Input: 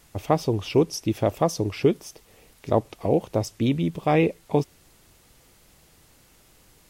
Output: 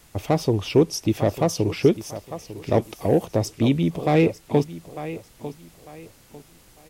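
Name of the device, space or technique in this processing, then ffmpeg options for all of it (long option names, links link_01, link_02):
one-band saturation: -filter_complex "[0:a]asettb=1/sr,asplit=3[link_01][link_02][link_03];[link_01]atrim=end=2.824[link_04];[link_02]atrim=start=2.82:end=3.26,asetpts=PTS-STARTPTS,afade=type=in:duration=0.004:curve=qsin,afade=type=out:start_time=0.436:duration=0.004:curve=qsin,highshelf=frequency=7400:gain=10.5[link_05];[link_03]atrim=start=3.256[link_06];[link_04][link_05]acrossfade=duration=0.004:curve1=hsin:curve2=qsin[link_07];[link_07][link_06]acrossfade=duration=0.004:curve1=qsin:curve2=hsin,aecho=1:1:899|1798|2697:0.178|0.0533|0.016,acrossover=split=520|3900[link_08][link_09][link_10];[link_09]asoftclip=type=tanh:threshold=-23.5dB[link_11];[link_08][link_11][link_10]amix=inputs=3:normalize=0,volume=3dB"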